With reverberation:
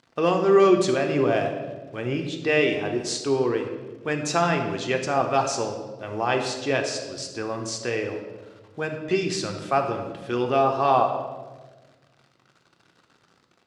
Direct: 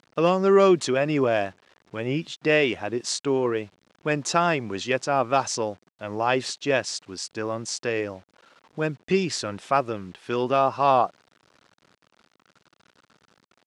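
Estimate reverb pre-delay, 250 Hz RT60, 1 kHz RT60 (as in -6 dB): 3 ms, 1.8 s, 1.1 s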